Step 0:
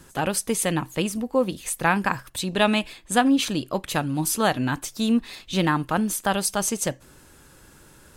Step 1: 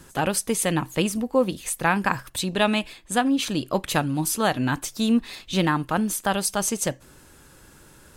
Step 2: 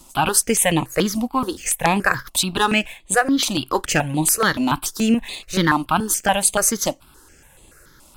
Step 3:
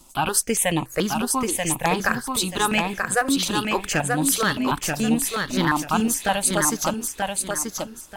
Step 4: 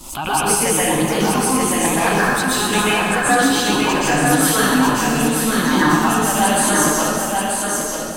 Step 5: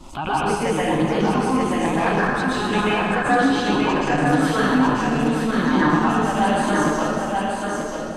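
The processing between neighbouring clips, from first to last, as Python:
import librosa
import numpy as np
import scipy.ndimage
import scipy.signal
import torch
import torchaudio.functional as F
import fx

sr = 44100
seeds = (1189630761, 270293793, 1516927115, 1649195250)

y1 = fx.rider(x, sr, range_db=10, speed_s=0.5)
y2 = fx.peak_eq(y1, sr, hz=150.0, db=-6.5, octaves=2.8)
y2 = fx.leveller(y2, sr, passes=1)
y2 = fx.phaser_held(y2, sr, hz=7.0, low_hz=440.0, high_hz=5400.0)
y2 = F.gain(torch.from_numpy(y2), 6.5).numpy()
y3 = fx.echo_feedback(y2, sr, ms=934, feedback_pct=27, wet_db=-4)
y3 = F.gain(torch.from_numpy(y3), -4.0).numpy()
y4 = fx.rev_plate(y3, sr, seeds[0], rt60_s=2.2, hf_ratio=0.65, predelay_ms=110, drr_db=-9.5)
y4 = fx.pre_swell(y4, sr, db_per_s=87.0)
y4 = F.gain(torch.from_numpy(y4), -3.5).numpy()
y5 = fx.spacing_loss(y4, sr, db_at_10k=22)
y5 = fx.transformer_sat(y5, sr, knee_hz=270.0)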